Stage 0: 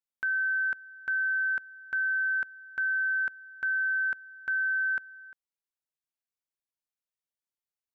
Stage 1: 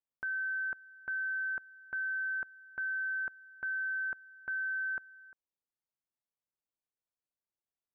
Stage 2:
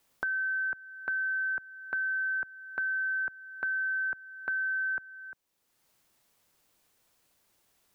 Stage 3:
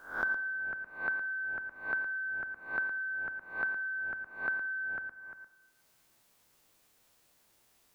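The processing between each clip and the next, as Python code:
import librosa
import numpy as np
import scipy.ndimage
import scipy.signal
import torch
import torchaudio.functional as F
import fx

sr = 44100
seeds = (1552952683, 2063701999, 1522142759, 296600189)

y1 = scipy.signal.sosfilt(scipy.signal.butter(2, 1100.0, 'lowpass', fs=sr, output='sos'), x)
y2 = fx.band_squash(y1, sr, depth_pct=70)
y2 = y2 * librosa.db_to_amplitude(4.0)
y3 = fx.spec_swells(y2, sr, rise_s=0.49)
y3 = y3 + 10.0 ** (-9.5 / 20.0) * np.pad(y3, (int(114 * sr / 1000.0), 0))[:len(y3)]
y3 = fx.rev_plate(y3, sr, seeds[0], rt60_s=1.4, hf_ratio=0.95, predelay_ms=0, drr_db=13.0)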